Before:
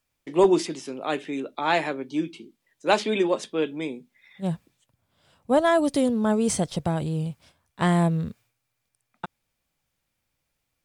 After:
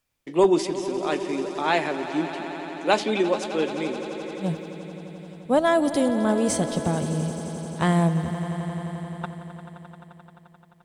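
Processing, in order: echo with a slow build-up 87 ms, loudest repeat 5, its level -16 dB

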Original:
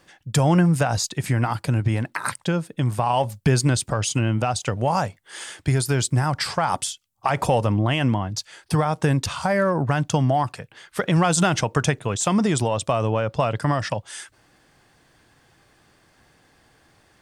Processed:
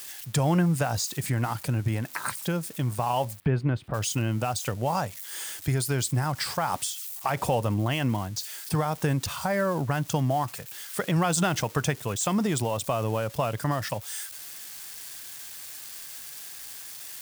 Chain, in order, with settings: zero-crossing glitches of -26 dBFS; 3.40–3.94 s: distance through air 490 m; trim -5.5 dB

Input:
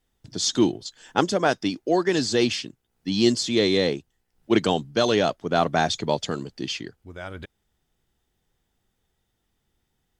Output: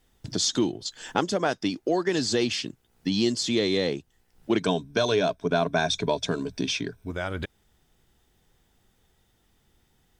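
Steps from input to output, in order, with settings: 4.60–7.11 s: rippled EQ curve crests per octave 1.6, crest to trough 11 dB; compression 2.5:1, threshold -35 dBFS, peak gain reduction 14 dB; trim +8 dB

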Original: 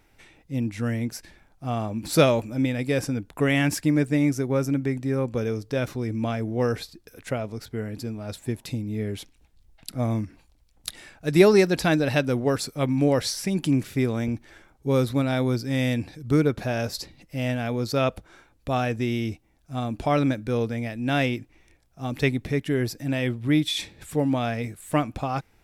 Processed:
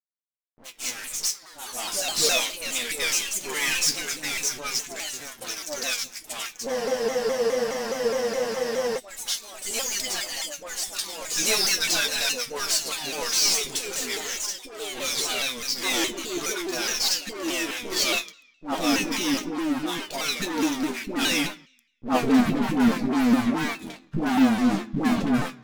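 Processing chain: band-pass sweep 6 kHz -> 240 Hz, 21.79–22.29 s; fuzz box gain 49 dB, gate -52 dBFS; chord resonator E3 major, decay 0.22 s; phase dispersion highs, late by 111 ms, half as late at 580 Hz; crossover distortion -52 dBFS; on a send at -11 dB: reverberation RT60 0.70 s, pre-delay 3 ms; on the sum: ever faster or slower copies 99 ms, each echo +3 st, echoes 3, each echo -6 dB; spectral freeze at 6.72 s, 2.25 s; vibrato with a chosen wave saw down 4.8 Hz, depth 160 cents; trim +7.5 dB

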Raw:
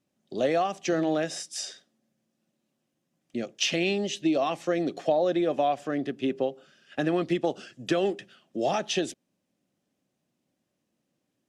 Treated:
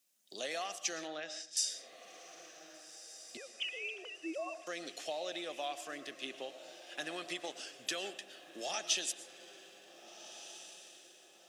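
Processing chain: 3.37–4.67 s: formants replaced by sine waves; differentiator; in parallel at +2 dB: compression, threshold -57 dBFS, peak gain reduction 23.5 dB; 1.07–1.57 s: on the sum: distance through air 180 m; echo that smears into a reverb 1592 ms, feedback 41%, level -13.5 dB; on a send at -13 dB: reverberation RT60 0.60 s, pre-delay 75 ms; on the sum: trim +3 dB

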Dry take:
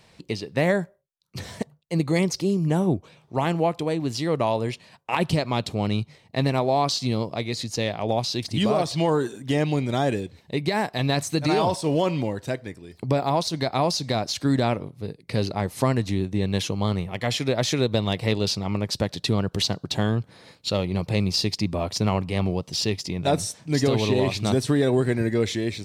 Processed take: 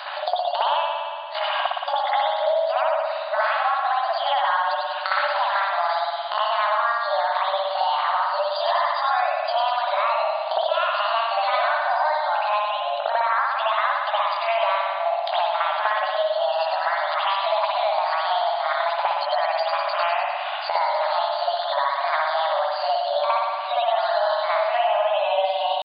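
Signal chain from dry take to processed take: pitch shift +8.5 st; FFT band-pass 570–4900 Hz; compression 5:1, threshold -38 dBFS, peak gain reduction 18 dB; spectral gate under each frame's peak -30 dB strong; spring tank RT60 1.3 s, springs 57 ms, chirp 45 ms, DRR -10 dB; three bands compressed up and down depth 70%; trim +8 dB

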